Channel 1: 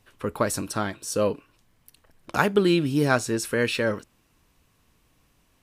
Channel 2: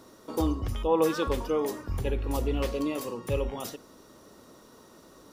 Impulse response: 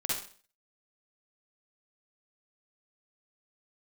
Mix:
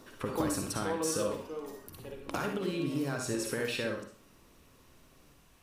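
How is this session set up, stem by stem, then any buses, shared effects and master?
−3.0 dB, 0.00 s, send −3.5 dB, brickwall limiter −14.5 dBFS, peak gain reduction 9 dB; downward compressor 6 to 1, threshold −34 dBFS, peak gain reduction 14 dB
−2.5 dB, 0.00 s, send −18 dB, Chebyshev high-pass filter 150 Hz, order 2; automatic ducking −16 dB, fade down 1.65 s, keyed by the first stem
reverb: on, RT60 0.45 s, pre-delay 44 ms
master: no processing

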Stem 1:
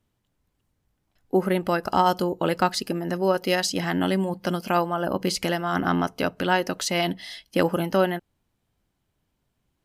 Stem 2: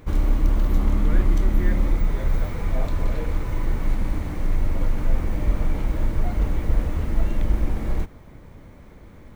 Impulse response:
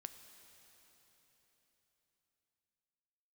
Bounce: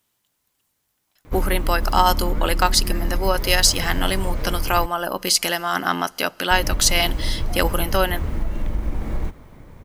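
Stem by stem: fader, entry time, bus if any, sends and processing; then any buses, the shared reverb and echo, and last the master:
+1.5 dB, 0.00 s, send −13 dB, spectral tilt +3.5 dB per octave
−0.5 dB, 1.25 s, muted 0:04.86–0:06.51, send −11.5 dB, downward compressor, threshold −18 dBFS, peak gain reduction 7 dB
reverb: on, RT60 4.1 s, pre-delay 3 ms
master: parametric band 990 Hz +2 dB

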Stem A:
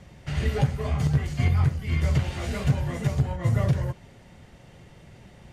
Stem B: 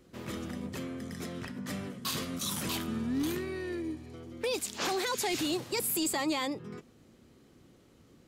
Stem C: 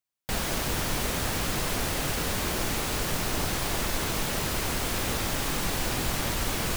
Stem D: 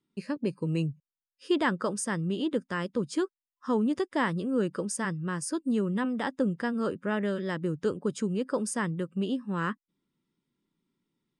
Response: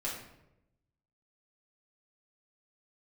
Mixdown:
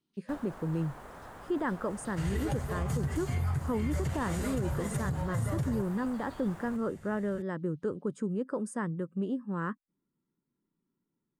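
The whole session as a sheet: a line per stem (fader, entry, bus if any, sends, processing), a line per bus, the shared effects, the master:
−5.5 dB, 1.90 s, no send, high-shelf EQ 2,700 Hz +10.5 dB
−8.0 dB, 0.00 s, no send, Butterworth high-pass 2,700 Hz; downward compressor, threshold −40 dBFS, peak gain reduction 10.5 dB; Savitzky-Golay smoothing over 15 samples
−9.5 dB, 0.00 s, no send, low-pass filter 3,300 Hz 6 dB per octave; parametric band 950 Hz +10 dB 2.2 octaves; automatic ducking −12 dB, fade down 0.40 s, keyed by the fourth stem
−2.5 dB, 0.00 s, no send, high-shelf EQ 2,300 Hz −8.5 dB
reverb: not used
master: flat-topped bell 3,600 Hz −8.5 dB; brickwall limiter −23 dBFS, peak gain reduction 10 dB

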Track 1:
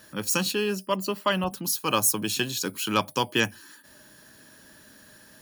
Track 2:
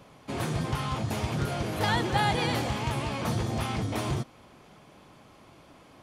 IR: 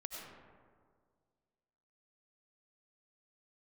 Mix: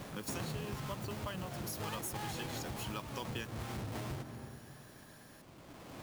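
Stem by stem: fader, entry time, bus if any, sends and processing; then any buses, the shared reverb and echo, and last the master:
−8.0 dB, 0.00 s, no send, noise that follows the level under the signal 16 dB
+1.5 dB, 0.00 s, send −18.5 dB, each half-wave held at its own peak; automatic ducking −14 dB, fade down 1.30 s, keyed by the first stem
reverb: on, RT60 1.9 s, pre-delay 55 ms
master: downward compressor 5 to 1, threshold −39 dBFS, peak gain reduction 14 dB

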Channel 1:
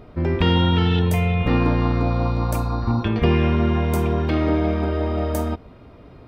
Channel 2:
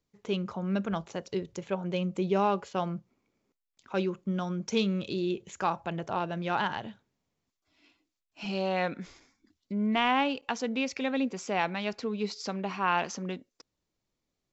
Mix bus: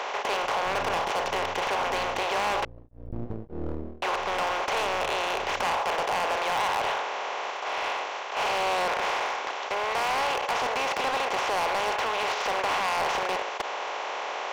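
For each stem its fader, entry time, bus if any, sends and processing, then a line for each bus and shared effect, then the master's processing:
−4.0 dB, 0.25 s, no send, Chebyshev low-pass filter 620 Hz, order 5; half-wave rectification; tremolo along a rectified sine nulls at 1.7 Hz; automatic ducking −14 dB, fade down 0.35 s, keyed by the second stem
+0.5 dB, 0.00 s, muted 0:02.65–0:04.02, no send, compressor on every frequency bin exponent 0.2; high-pass filter 550 Hz 24 dB per octave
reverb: not used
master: high-shelf EQ 4,300 Hz −11 dB; hard clipping −23 dBFS, distortion −8 dB

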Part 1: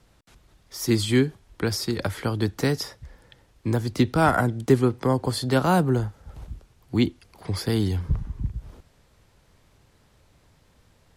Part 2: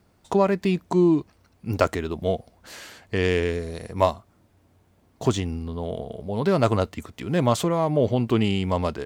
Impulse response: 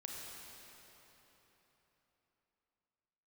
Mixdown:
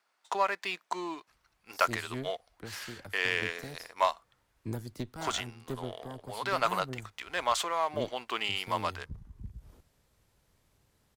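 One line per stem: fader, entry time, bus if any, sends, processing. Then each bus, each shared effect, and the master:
−11.0 dB, 1.00 s, no send, high-shelf EQ 9,600 Hz +12 dB; harmonic generator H 4 −13 dB, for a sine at −5.5 dBFS; automatic ducking −10 dB, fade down 0.50 s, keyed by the second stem
−2.5 dB, 0.00 s, no send, Chebyshev high-pass filter 1,200 Hz, order 2; high-shelf EQ 9,800 Hz −9.5 dB; leveller curve on the samples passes 1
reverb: not used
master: no processing

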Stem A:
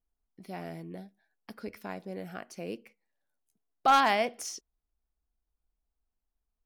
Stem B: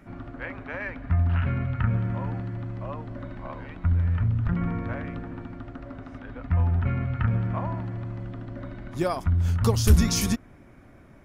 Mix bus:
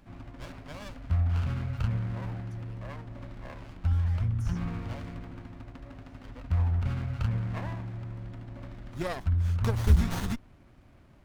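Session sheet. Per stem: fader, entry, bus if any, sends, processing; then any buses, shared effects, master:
−17.0 dB, 0.00 s, no send, downward compressor, threshold −26 dBFS, peak gain reduction 8.5 dB; hard clipping −29.5 dBFS, distortion −10 dB
−1.5 dB, 0.00 s, no send, windowed peak hold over 17 samples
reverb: not used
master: parametric band 340 Hz −7 dB 2.8 octaves

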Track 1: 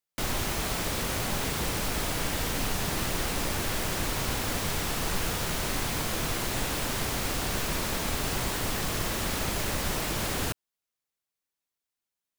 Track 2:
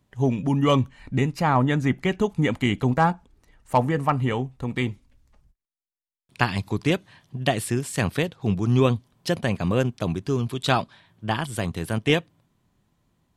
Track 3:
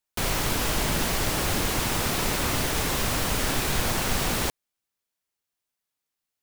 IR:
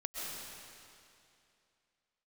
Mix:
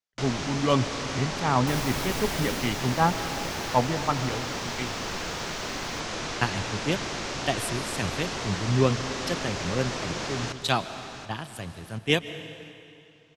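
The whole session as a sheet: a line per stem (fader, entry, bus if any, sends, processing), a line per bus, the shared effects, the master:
0.0 dB, 0.00 s, no send, echo send −10.5 dB, Chebyshev low-pass filter 6,200 Hz, order 3; low-shelf EQ 140 Hz −11.5 dB
−8.0 dB, 0.00 s, send −10.5 dB, no echo send, multiband upward and downward expander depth 100%
0:02.47 −8.5 dB → 0:02.84 −15.5 dB → 0:03.67 −15.5 dB → 0:03.90 −23 dB, 1.50 s, no send, echo send −21.5 dB, no processing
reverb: on, RT60 2.6 s, pre-delay 90 ms
echo: repeating echo 730 ms, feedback 36%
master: no processing

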